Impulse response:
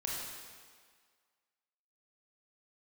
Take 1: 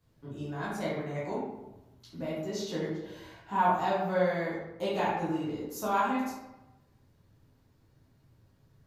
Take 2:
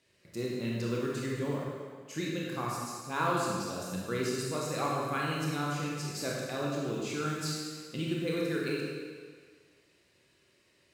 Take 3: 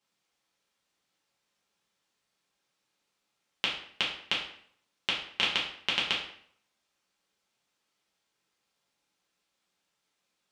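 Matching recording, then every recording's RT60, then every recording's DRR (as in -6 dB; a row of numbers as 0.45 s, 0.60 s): 2; 1.0 s, 1.8 s, 0.60 s; -8.5 dB, -4.0 dB, -5.0 dB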